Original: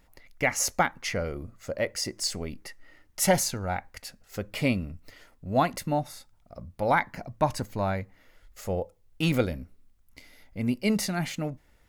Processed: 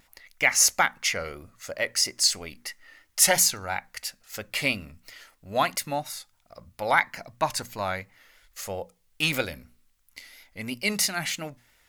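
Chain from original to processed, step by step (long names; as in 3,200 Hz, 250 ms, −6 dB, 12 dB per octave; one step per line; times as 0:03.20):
tilt shelving filter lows −8.5 dB, about 810 Hz
pitch vibrato 3 Hz 60 cents
mains-hum notches 60/120/180/240 Hz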